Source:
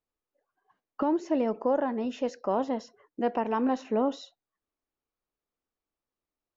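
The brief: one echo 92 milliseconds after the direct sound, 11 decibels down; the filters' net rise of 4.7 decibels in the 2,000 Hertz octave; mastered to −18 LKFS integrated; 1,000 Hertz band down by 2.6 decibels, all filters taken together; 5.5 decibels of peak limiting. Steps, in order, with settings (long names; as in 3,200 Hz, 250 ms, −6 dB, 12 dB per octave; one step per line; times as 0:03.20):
parametric band 1,000 Hz −5 dB
parametric band 2,000 Hz +8 dB
brickwall limiter −21.5 dBFS
single-tap delay 92 ms −11 dB
level +14 dB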